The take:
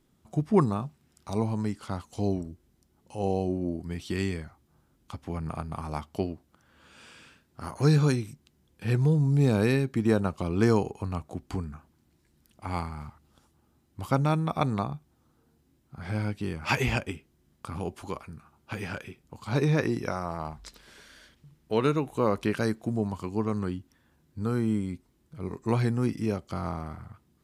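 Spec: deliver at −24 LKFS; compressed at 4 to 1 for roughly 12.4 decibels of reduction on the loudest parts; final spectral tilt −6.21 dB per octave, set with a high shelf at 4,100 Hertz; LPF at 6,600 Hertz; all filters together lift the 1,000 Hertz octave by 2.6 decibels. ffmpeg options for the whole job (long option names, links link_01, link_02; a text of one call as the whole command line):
ffmpeg -i in.wav -af "lowpass=6600,equalizer=frequency=1000:width_type=o:gain=3,highshelf=frequency=4100:gain=5,acompressor=threshold=-32dB:ratio=4,volume=13.5dB" out.wav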